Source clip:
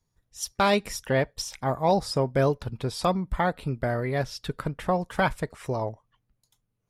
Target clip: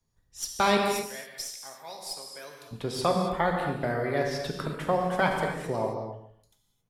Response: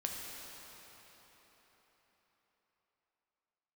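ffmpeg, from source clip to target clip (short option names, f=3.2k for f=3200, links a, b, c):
-filter_complex "[0:a]asettb=1/sr,asplit=3[a][b][c];[a]atrim=end=0.774[d];[b]atrim=start=0.77:end=2.71,asetpts=PTS-STARTPTS,afade=t=in:d=0.004:c=qsin,afade=t=out:st=1.936:d=0.004:c=qsin,aderivative[e];[c]atrim=start=2.706[f];[d][e]acrossfade=d=0.004:c1=hsin:c2=qsin[g];[g][f]acrossfade=d=0.004:c1=qsin:c2=hsin,asplit=2[h][i];[i]adelay=144,lowpass=f=1.5k:p=1,volume=-11.5dB,asplit=2[j][k];[k]adelay=144,lowpass=f=1.5k:p=1,volume=0.2,asplit=2[l][m];[m]adelay=144,lowpass=f=1.5k:p=1,volume=0.2[n];[h][j][l][n]amix=inputs=4:normalize=0[o];[1:a]atrim=start_sample=2205,afade=t=out:st=0.33:d=0.01,atrim=end_sample=14994[p];[o][p]afir=irnorm=-1:irlink=0,acrossover=split=160|650|3500[q][r][s][t];[q]acompressor=threshold=-44dB:ratio=6[u];[t]aeval=exprs='0.0891*(cos(1*acos(clip(val(0)/0.0891,-1,1)))-cos(1*PI/2))+0.00708*(cos(6*acos(clip(val(0)/0.0891,-1,1)))-cos(6*PI/2))+0.00251*(cos(8*acos(clip(val(0)/0.0891,-1,1)))-cos(8*PI/2))':c=same[v];[u][r][s][v]amix=inputs=4:normalize=0"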